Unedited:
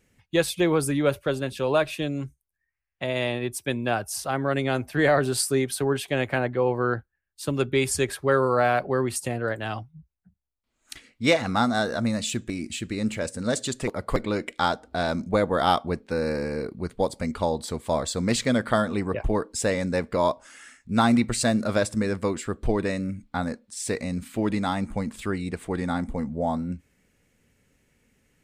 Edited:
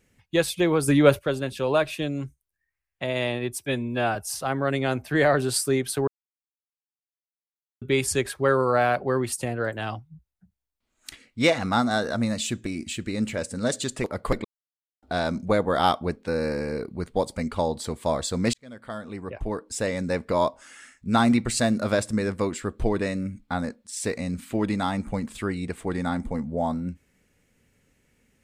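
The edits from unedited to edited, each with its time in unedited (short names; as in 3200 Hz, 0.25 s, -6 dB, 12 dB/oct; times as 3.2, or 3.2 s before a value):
0.88–1.19 gain +6 dB
3.66–3.99 stretch 1.5×
5.91–7.65 mute
14.28–14.86 mute
18.37–20.13 fade in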